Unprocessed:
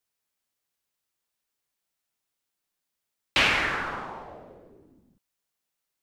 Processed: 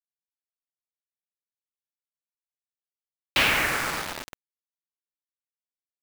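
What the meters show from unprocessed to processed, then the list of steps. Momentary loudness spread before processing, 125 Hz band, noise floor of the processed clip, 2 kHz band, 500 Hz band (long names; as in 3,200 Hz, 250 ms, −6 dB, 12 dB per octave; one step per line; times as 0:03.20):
18 LU, +1.5 dB, below −85 dBFS, +1.0 dB, +1.0 dB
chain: on a send: bucket-brigade delay 114 ms, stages 2,048, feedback 76%, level −10 dB
on the sum: bit reduction 5 bits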